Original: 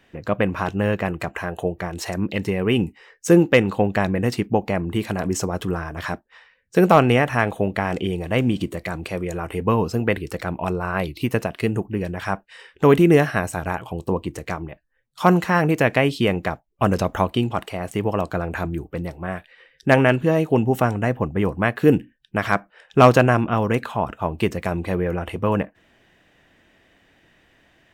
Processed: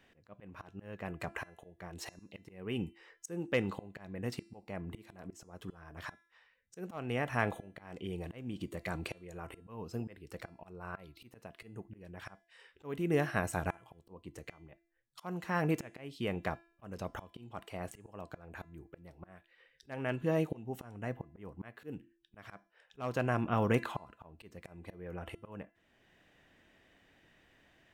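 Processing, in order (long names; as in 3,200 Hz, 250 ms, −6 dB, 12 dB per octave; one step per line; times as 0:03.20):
volume swells 744 ms
hum removal 338.2 Hz, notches 32
level −8 dB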